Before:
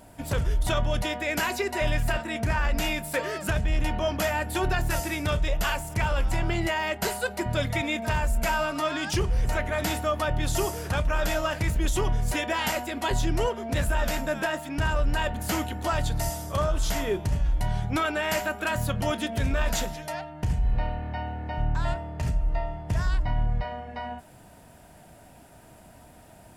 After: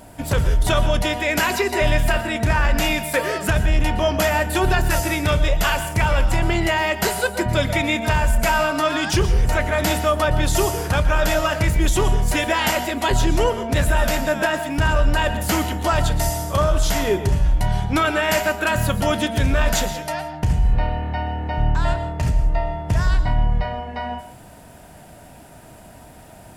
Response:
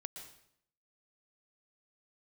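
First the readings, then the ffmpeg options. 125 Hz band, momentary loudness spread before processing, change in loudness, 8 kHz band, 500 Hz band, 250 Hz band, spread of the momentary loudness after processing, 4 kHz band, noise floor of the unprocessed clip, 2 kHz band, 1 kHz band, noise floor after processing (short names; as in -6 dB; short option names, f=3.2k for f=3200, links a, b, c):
+7.0 dB, 4 LU, +7.5 dB, +7.5 dB, +7.5 dB, +7.5 dB, 4 LU, +7.5 dB, -51 dBFS, +7.5 dB, +7.5 dB, -43 dBFS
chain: -filter_complex "[0:a]asplit=2[a][b];[1:a]atrim=start_sample=2205,afade=t=out:st=0.24:d=0.01,atrim=end_sample=11025[c];[b][c]afir=irnorm=-1:irlink=0,volume=5dB[d];[a][d]amix=inputs=2:normalize=0,volume=1dB"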